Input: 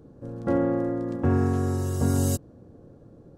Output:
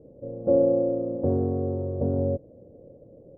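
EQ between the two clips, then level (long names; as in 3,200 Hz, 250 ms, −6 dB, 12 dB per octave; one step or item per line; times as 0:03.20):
transistor ladder low-pass 610 Hz, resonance 70%
+7.0 dB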